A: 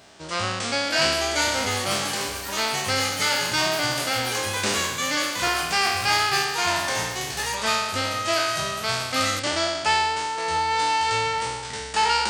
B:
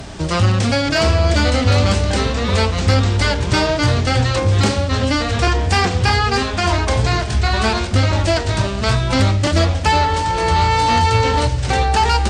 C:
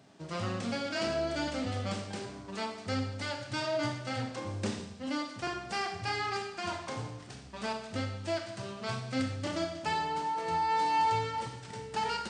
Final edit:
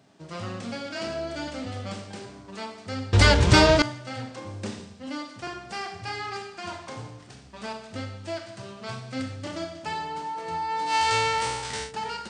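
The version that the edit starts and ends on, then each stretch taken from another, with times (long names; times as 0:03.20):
C
0:03.13–0:03.82: punch in from B
0:10.91–0:11.88: punch in from A, crossfade 0.10 s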